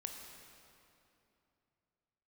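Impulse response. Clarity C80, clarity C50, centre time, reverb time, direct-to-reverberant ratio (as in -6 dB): 4.5 dB, 3.5 dB, 75 ms, 2.9 s, 2.5 dB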